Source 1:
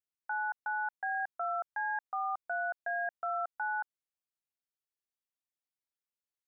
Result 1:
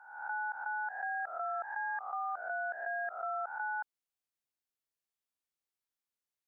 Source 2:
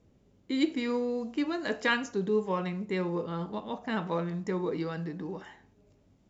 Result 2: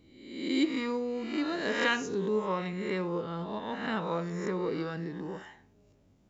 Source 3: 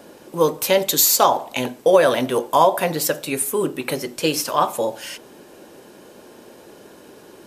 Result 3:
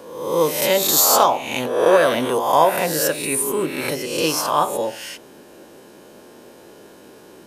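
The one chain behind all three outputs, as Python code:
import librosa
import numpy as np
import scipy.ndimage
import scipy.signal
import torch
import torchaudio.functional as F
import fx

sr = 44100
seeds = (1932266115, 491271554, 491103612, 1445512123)

y = fx.spec_swells(x, sr, rise_s=0.86)
y = y * librosa.db_to_amplitude(-2.5)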